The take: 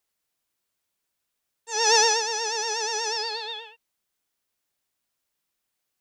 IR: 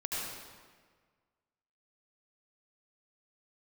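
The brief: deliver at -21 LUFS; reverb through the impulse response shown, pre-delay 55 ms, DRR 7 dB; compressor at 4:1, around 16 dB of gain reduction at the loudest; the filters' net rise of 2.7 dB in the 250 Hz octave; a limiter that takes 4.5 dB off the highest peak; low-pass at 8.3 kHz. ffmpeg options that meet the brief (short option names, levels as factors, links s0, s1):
-filter_complex "[0:a]lowpass=8300,equalizer=f=250:t=o:g=7.5,acompressor=threshold=0.0178:ratio=4,alimiter=level_in=1.58:limit=0.0631:level=0:latency=1,volume=0.631,asplit=2[s0][s1];[1:a]atrim=start_sample=2205,adelay=55[s2];[s1][s2]afir=irnorm=-1:irlink=0,volume=0.266[s3];[s0][s3]amix=inputs=2:normalize=0,volume=5.31"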